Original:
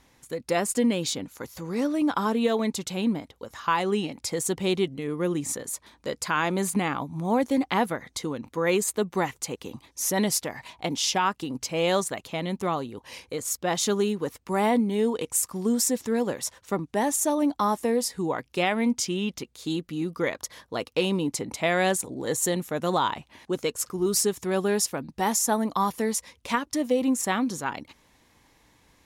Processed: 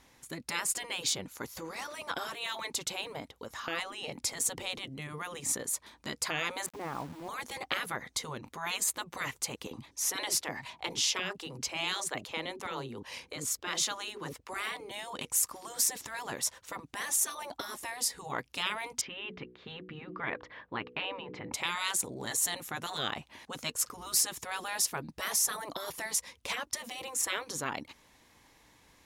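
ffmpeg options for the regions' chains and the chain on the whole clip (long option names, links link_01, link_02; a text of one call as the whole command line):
ffmpeg -i in.wav -filter_complex "[0:a]asettb=1/sr,asplit=3[link_01][link_02][link_03];[link_01]atrim=end=3.634[link_04];[link_02]atrim=start=3.63:end=4.89,asetpts=PTS-STARTPTS,afade=type=in:duration=0.004:curve=qsin,afade=type=out:start_time=1.256:duration=0.004:curve=qsin,equalizer=frequency=230:width=1.3:gain=11,acompressor=threshold=-22dB:ratio=2:attack=3.2:release=140:knee=1:detection=peak[link_05];[link_03]atrim=start=4.886[link_06];[link_04][link_05]acrossfade=duration=0.004:curve1=hsin:curve2=qsin[link_07];[link_07][link_06]acrossfade=duration=0.004:curve1=qsin:curve2=hsin,asettb=1/sr,asplit=3[link_08][link_09][link_10];[link_08]atrim=end=6.664[link_11];[link_09]atrim=start=6.66:end=7.29,asetpts=PTS-STARTPTS,afade=type=in:duration=0.004:curve=qsin,afade=type=out:start_time=0.626:duration=0.004:curve=qsin,lowpass=1200,acompressor=threshold=-33dB:ratio=2:attack=3.2:release=140:knee=1:detection=peak,aeval=exprs='val(0)*gte(abs(val(0)),0.00631)':channel_layout=same[link_12];[link_10]atrim=start=7.286[link_13];[link_11][link_12]acrossfade=duration=0.004:curve1=hsin:curve2=qsin[link_14];[link_14][link_13]acrossfade=duration=0.004:curve1=qsin:curve2=hsin,asettb=1/sr,asplit=3[link_15][link_16][link_17];[link_15]atrim=end=9.674[link_18];[link_16]atrim=start=9.67:end=14.91,asetpts=PTS-STARTPTS,afade=type=in:duration=0.004:curve=qsin,afade=type=out:start_time=5.236:duration=0.004:curve=qsin,highshelf=frequency=8700:gain=-7,acrossover=split=380[link_19][link_20];[link_19]adelay=40[link_21];[link_21][link_20]amix=inputs=2:normalize=0,atrim=end_sample=231084[link_22];[link_17]atrim=start=14.906[link_23];[link_18][link_22]acrossfade=duration=0.004:curve1=hsin:curve2=qsin[link_24];[link_24][link_23]acrossfade=duration=0.004:curve1=qsin:curve2=hsin,asettb=1/sr,asplit=3[link_25][link_26][link_27];[link_25]atrim=end=19.014[link_28];[link_26]atrim=start=19.01:end=21.53,asetpts=PTS-STARTPTS,afade=type=in:duration=0.004:curve=qsin,afade=type=out:start_time=2.516:duration=0.004:curve=qsin,lowpass=frequency=2700:width=0.5412,lowpass=frequency=2700:width=1.3066,equalizer=frequency=1700:width_type=o:width=0.3:gain=3.5,bandreject=frequency=61.35:width_type=h:width=4,bandreject=frequency=122.7:width_type=h:width=4,bandreject=frequency=184.05:width_type=h:width=4,bandreject=frequency=245.4:width_type=h:width=4,bandreject=frequency=306.75:width_type=h:width=4,bandreject=frequency=368.1:width_type=h:width=4,bandreject=frequency=429.45:width_type=h:width=4,bandreject=frequency=490.8:width_type=h:width=4[link_29];[link_27]atrim=start=21.526[link_30];[link_28][link_29]acrossfade=duration=0.004:curve1=hsin:curve2=qsin[link_31];[link_31][link_30]acrossfade=duration=0.004:curve1=qsin:curve2=hsin,afftfilt=real='re*lt(hypot(re,im),0.141)':imag='im*lt(hypot(re,im),0.141)':win_size=1024:overlap=0.75,lowshelf=frequency=420:gain=-4" out.wav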